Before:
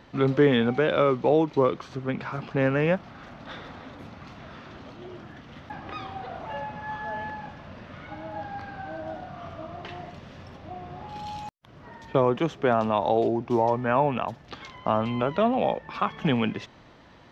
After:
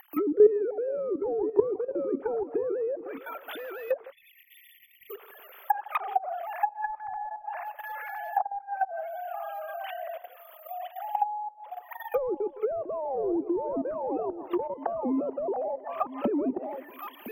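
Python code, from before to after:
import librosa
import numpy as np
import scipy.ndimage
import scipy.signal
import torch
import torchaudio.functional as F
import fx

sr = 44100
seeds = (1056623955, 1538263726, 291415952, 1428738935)

p1 = fx.sine_speech(x, sr)
p2 = np.clip(p1, -10.0 ** (-25.0 / 20.0), 10.0 ** (-25.0 / 20.0))
p3 = p1 + (p2 * librosa.db_to_amplitude(-6.0))
p4 = fx.high_shelf(p3, sr, hz=3000.0, db=5.5)
p5 = p4 + 10.0 ** (-9.0 / 20.0) * np.pad(p4, (int(1010 * sr / 1000.0), 0))[:len(p4)]
p6 = fx.level_steps(p5, sr, step_db=14)
p7 = fx.echo_filtered(p6, sr, ms=160, feedback_pct=60, hz=1300.0, wet_db=-18.0)
p8 = fx.spec_erase(p7, sr, start_s=4.12, length_s=0.98, low_hz=200.0, high_hz=1800.0)
p9 = (np.kron(scipy.signal.resample_poly(p8, 1, 3), np.eye(3)[0]) * 3)[:len(p8)]
p10 = fx.dynamic_eq(p9, sr, hz=800.0, q=1.6, threshold_db=-43.0, ratio=4.0, max_db=6)
p11 = fx.env_lowpass_down(p10, sr, base_hz=360.0, full_db=-20.5)
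y = p11 * librosa.db_to_amplitude(4.0)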